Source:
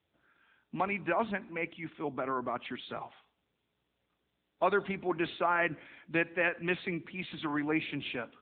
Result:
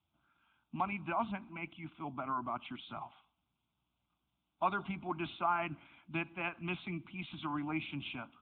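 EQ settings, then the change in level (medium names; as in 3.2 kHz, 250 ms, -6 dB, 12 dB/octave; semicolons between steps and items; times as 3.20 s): treble shelf 3.2 kHz -8 dB; band-stop 390 Hz, Q 12; static phaser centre 1.8 kHz, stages 6; 0.0 dB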